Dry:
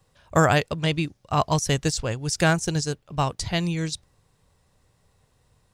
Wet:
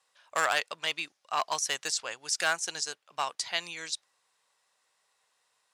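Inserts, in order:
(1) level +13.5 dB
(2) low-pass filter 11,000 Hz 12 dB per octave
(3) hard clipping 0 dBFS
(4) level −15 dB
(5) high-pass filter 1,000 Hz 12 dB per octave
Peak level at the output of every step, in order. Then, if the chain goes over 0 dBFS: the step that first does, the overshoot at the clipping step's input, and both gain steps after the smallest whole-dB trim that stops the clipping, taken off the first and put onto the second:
+8.0, +8.0, 0.0, −15.0, −11.0 dBFS
step 1, 8.0 dB
step 1 +5.5 dB, step 4 −7 dB

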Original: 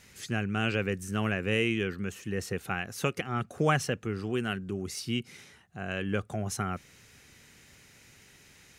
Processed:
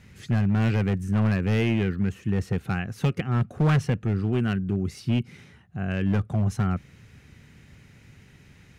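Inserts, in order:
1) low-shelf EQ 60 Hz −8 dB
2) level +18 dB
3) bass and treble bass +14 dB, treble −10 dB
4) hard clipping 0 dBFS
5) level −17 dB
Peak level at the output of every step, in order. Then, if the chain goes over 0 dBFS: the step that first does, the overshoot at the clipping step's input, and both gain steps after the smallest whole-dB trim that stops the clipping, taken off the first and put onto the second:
−12.5, +5.5, +8.5, 0.0, −17.0 dBFS
step 2, 8.5 dB
step 2 +9 dB, step 5 −8 dB

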